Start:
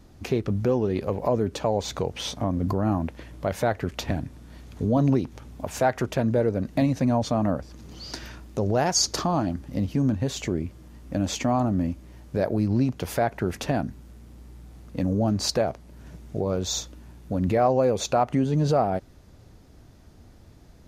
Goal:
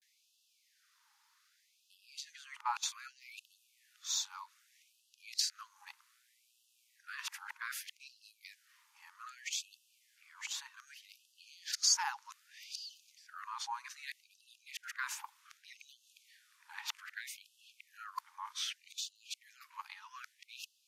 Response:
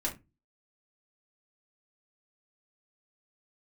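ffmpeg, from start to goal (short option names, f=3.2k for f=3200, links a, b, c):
-af "areverse,afftfilt=real='re*gte(b*sr/1024,800*pow(2600/800,0.5+0.5*sin(2*PI*0.64*pts/sr)))':imag='im*gte(b*sr/1024,800*pow(2600/800,0.5+0.5*sin(2*PI*0.64*pts/sr)))':win_size=1024:overlap=0.75,volume=-6dB"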